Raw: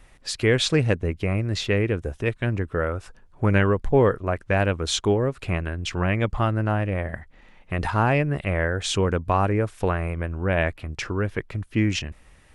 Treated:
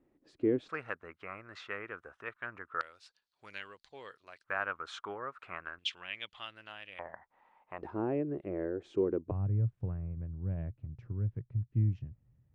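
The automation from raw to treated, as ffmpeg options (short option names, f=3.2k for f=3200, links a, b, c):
-af "asetnsamples=n=441:p=0,asendcmd='0.69 bandpass f 1300;2.81 bandpass f 4300;4.44 bandpass f 1300;5.79 bandpass f 3300;6.99 bandpass f 920;7.82 bandpass f 350;9.31 bandpass f 120',bandpass=f=310:t=q:w=4.3:csg=0"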